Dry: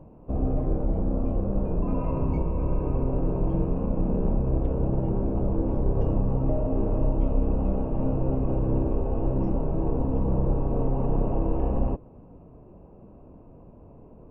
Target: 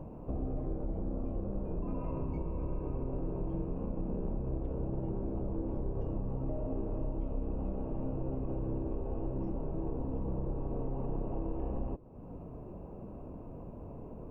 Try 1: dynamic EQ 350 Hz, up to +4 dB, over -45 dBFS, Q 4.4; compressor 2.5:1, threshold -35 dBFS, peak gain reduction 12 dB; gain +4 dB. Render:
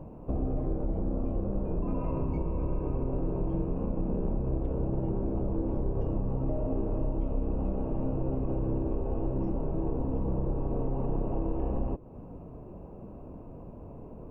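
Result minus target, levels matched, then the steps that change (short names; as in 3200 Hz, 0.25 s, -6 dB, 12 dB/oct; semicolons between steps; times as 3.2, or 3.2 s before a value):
compressor: peak gain reduction -5.5 dB
change: compressor 2.5:1, threshold -44 dBFS, peak gain reduction 17.5 dB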